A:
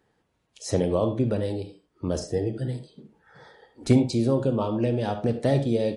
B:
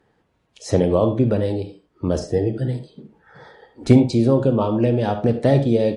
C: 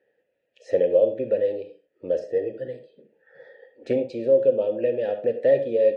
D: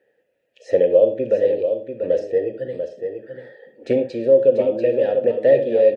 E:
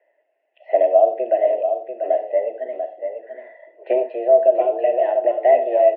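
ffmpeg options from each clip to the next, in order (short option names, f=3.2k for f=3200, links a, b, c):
-af "aemphasis=mode=reproduction:type=cd,volume=6dB"
-filter_complex "[0:a]asplit=3[a][b][c];[a]bandpass=f=530:t=q:w=8,volume=0dB[d];[b]bandpass=f=1.84k:t=q:w=8,volume=-6dB[e];[c]bandpass=f=2.48k:t=q:w=8,volume=-9dB[f];[d][e][f]amix=inputs=3:normalize=0,volume=4.5dB"
-af "aecho=1:1:690:0.422,volume=4.5dB"
-af "highpass=f=190:t=q:w=0.5412,highpass=f=190:t=q:w=1.307,lowpass=f=2.6k:t=q:w=0.5176,lowpass=f=2.6k:t=q:w=0.7071,lowpass=f=2.6k:t=q:w=1.932,afreqshift=120"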